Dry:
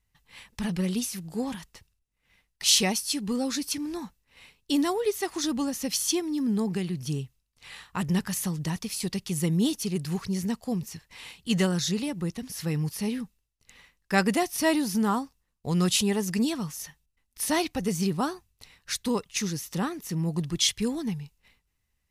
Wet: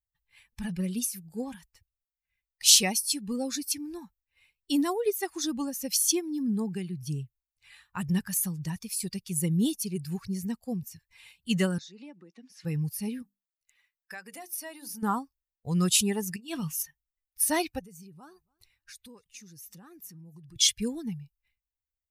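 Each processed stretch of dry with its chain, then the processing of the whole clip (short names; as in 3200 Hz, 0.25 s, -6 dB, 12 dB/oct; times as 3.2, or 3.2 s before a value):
11.78–12.65 compressor, threshold -32 dBFS + HPF 220 Hz 24 dB/oct + air absorption 92 m
13.22–15.03 low shelf 280 Hz -11 dB + compressor 8:1, threshold -32 dBFS + notches 50/100/150/200/250/300/350/400/450 Hz
16.36–16.83 bell 2900 Hz +8.5 dB 0.39 oct + negative-ratio compressor -30 dBFS, ratio -0.5 + doubler 25 ms -13.5 dB
17.79–20.56 compressor 4:1, threshold -39 dBFS + feedback echo 0.279 s, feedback 16%, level -20 dB
whole clip: per-bin expansion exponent 1.5; high shelf 5900 Hz +9.5 dB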